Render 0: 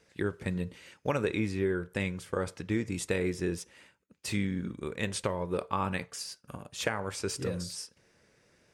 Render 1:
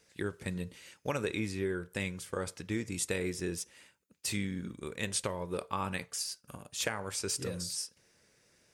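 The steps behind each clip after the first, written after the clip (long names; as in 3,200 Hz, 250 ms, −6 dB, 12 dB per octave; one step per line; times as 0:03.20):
high-shelf EQ 4,000 Hz +11 dB
level −4.5 dB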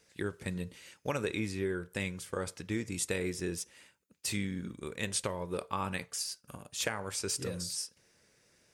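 no processing that can be heard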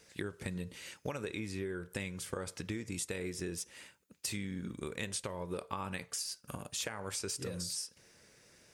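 downward compressor, threshold −41 dBFS, peak gain reduction 13 dB
level +5 dB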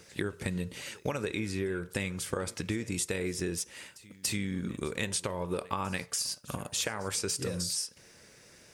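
echo ahead of the sound 286 ms −21.5 dB
level +6 dB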